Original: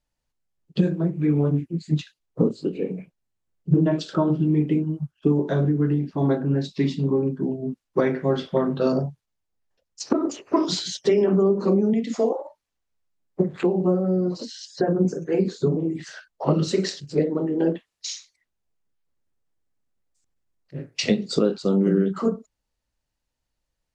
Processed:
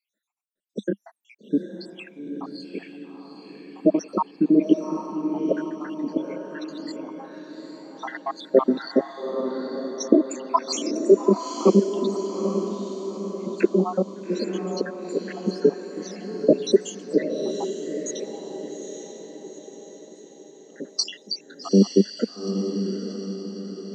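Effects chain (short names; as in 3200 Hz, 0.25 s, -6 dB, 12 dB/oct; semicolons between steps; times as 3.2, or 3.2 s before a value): random spectral dropouts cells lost 81%; elliptic high-pass 200 Hz, stop band 40 dB; on a send: diffused feedback echo 0.852 s, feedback 52%, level -7 dB; on the sum: gain +7.5 dB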